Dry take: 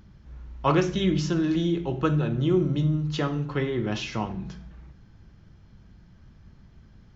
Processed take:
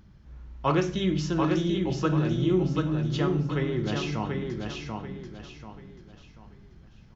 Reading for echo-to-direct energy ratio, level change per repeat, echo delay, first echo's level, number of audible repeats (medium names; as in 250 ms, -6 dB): -3.5 dB, -9.0 dB, 737 ms, -4.0 dB, 4